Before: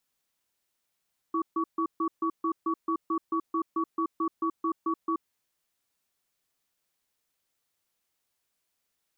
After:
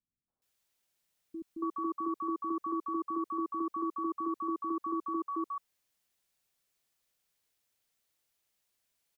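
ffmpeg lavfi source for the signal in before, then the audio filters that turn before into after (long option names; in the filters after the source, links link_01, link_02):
-f lavfi -i "aevalsrc='0.0422*(sin(2*PI*328*t)+sin(2*PI*1130*t))*clip(min(mod(t,0.22),0.08-mod(t,0.22))/0.005,0,1)':duration=3.92:sample_rate=44100"
-filter_complex "[0:a]acrossover=split=280|1100[link_01][link_02][link_03];[link_02]adelay=280[link_04];[link_03]adelay=420[link_05];[link_01][link_04][link_05]amix=inputs=3:normalize=0"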